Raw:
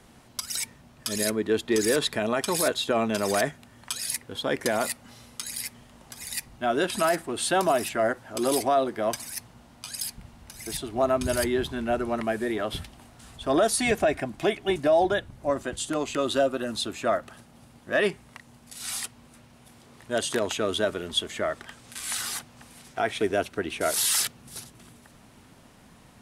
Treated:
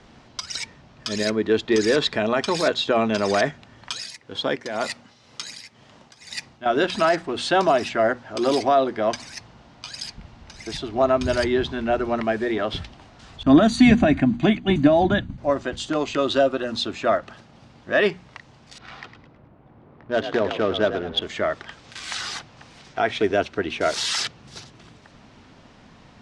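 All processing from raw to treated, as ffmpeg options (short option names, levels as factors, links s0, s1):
-filter_complex "[0:a]asettb=1/sr,asplit=3[s0][s1][s2];[s0]atrim=end=3.924[s3];[s1]atrim=start=3.92:end=6.66,asetpts=PTS-STARTPTS,afade=t=in:d=0.004:c=qsin,afade=t=out:st=2.736:d=0.004:c=qsin,highpass=100,highshelf=f=6700:g=5.5,tremolo=f=2:d=0.7[s4];[s2]atrim=start=6.656[s5];[s3][s4]acrossfade=d=0.004:c1=hsin:c2=qsin[s6];[s6][s5]acrossfade=d=0.004:c1=qsin:c2=hsin,asettb=1/sr,asplit=3[s7][s8][s9];[s7]atrim=end=13.434[s10];[s8]atrim=start=13.43:end=15.38,asetpts=PTS-STARTPTS,afade=t=in:d=0.004:c=qsin,afade=t=out:st=1.946:d=0.004:c=qsin,lowshelf=f=330:t=q:w=3:g=8,agate=range=0.0224:threshold=0.02:ratio=3:release=100:detection=peak,asuperstop=centerf=5300:order=12:qfactor=5.7[s11];[s9]atrim=start=15.376[s12];[s10][s11]acrossfade=d=0.004:c1=hsin:c2=qsin[s13];[s13][s12]acrossfade=d=0.004:c1=qsin:c2=hsin,asettb=1/sr,asplit=3[s14][s15][s16];[s14]atrim=end=18.784[s17];[s15]atrim=start=18.78:end=21.22,asetpts=PTS-STARTPTS,afade=t=in:d=0.004:c=qsin,afade=t=out:st=2.436:d=0.004:c=qsin,aemphasis=mode=reproduction:type=50fm,adynamicsmooth=sensitivity=5.5:basefreq=1100,asplit=5[s18][s19][s20][s21][s22];[s19]adelay=106,afreqshift=54,volume=0.316[s23];[s20]adelay=212,afreqshift=108,volume=0.114[s24];[s21]adelay=318,afreqshift=162,volume=0.0412[s25];[s22]adelay=424,afreqshift=216,volume=0.0148[s26];[s18][s23][s24][s25][s26]amix=inputs=5:normalize=0,atrim=end_sample=107604[s27];[s16]atrim=start=21.216[s28];[s17][s27]acrossfade=d=0.004:c1=hsin:c2=qsin[s29];[s29][s28]acrossfade=d=0.004:c1=qsin:c2=hsin,lowpass=f=5800:w=0.5412,lowpass=f=5800:w=1.3066,bandreject=f=60:t=h:w=6,bandreject=f=120:t=h:w=6,bandreject=f=180:t=h:w=6,bandreject=f=240:t=h:w=6,volume=1.68"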